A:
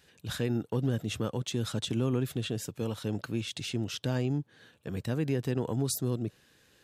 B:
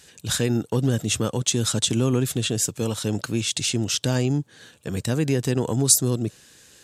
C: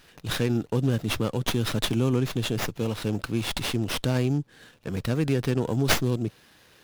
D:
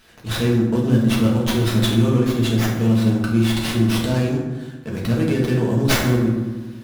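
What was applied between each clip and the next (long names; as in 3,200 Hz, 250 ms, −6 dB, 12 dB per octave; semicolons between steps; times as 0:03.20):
parametric band 7,600 Hz +12.5 dB 1.3 octaves; level +7.5 dB
windowed peak hold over 5 samples; level −2.5 dB
convolution reverb RT60 1.3 s, pre-delay 5 ms, DRR −3.5 dB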